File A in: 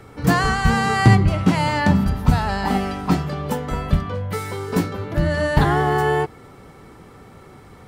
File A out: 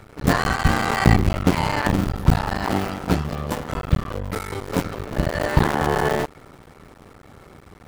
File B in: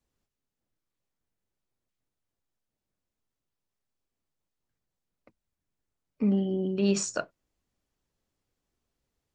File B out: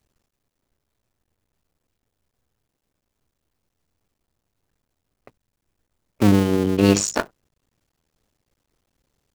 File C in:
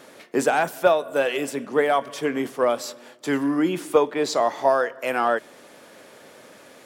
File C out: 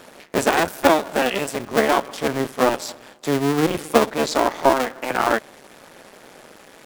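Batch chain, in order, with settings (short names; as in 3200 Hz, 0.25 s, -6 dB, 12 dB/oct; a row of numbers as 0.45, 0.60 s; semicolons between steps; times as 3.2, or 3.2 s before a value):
cycle switcher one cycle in 2, muted; normalise peaks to -2 dBFS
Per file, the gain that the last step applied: +0.5, +12.5, +5.0 dB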